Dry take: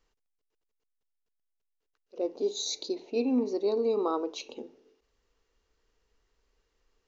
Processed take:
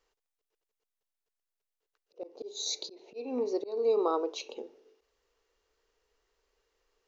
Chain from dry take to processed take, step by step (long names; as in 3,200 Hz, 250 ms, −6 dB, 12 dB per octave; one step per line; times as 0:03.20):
low shelf with overshoot 310 Hz −8.5 dB, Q 1.5
volume swells 255 ms